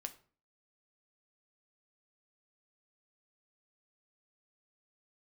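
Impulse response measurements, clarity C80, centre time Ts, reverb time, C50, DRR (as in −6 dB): 19.5 dB, 6 ms, 0.45 s, 15.0 dB, 7.0 dB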